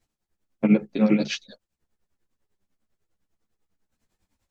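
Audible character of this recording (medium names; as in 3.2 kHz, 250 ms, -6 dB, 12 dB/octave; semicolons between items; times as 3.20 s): tremolo triangle 10 Hz, depth 95%; a shimmering, thickened sound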